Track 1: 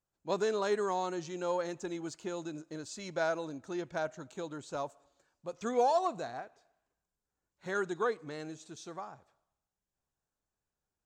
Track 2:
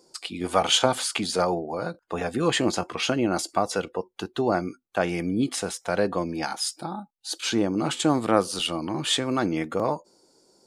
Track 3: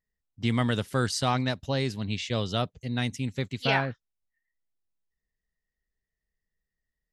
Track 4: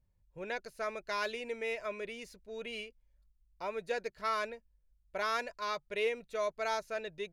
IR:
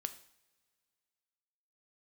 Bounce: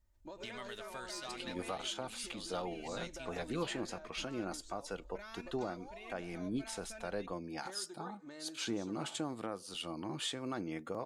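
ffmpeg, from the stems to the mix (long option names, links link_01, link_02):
-filter_complex "[0:a]acompressor=threshold=-42dB:ratio=5,volume=-3.5dB,asplit=2[link_01][link_02];[link_02]volume=-8.5dB[link_03];[1:a]adelay=1150,volume=-12dB[link_04];[2:a]highpass=frequency=1400:poles=1,acompressor=threshold=-43dB:ratio=3,asoftclip=type=tanh:threshold=-30dB,volume=-6dB,asplit=2[link_05][link_06];[link_06]volume=-5.5dB[link_07];[3:a]asubboost=boost=11.5:cutoff=140,alimiter=level_in=6dB:limit=-24dB:level=0:latency=1,volume=-6dB,volume=-6dB,asplit=2[link_08][link_09];[link_09]volume=-10.5dB[link_10];[link_01][link_08]amix=inputs=2:normalize=0,aecho=1:1:3.3:0.94,acompressor=threshold=-51dB:ratio=4,volume=0dB[link_11];[4:a]atrim=start_sample=2205[link_12];[link_03][link_07][link_10]amix=inputs=3:normalize=0[link_13];[link_13][link_12]afir=irnorm=-1:irlink=0[link_14];[link_04][link_05][link_11][link_14]amix=inputs=4:normalize=0,alimiter=level_in=3dB:limit=-24dB:level=0:latency=1:release=460,volume=-3dB"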